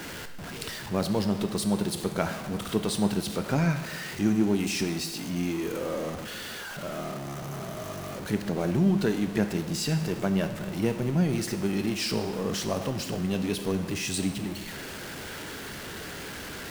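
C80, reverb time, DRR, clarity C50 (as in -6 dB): 11.5 dB, 1.2 s, 7.5 dB, 9.5 dB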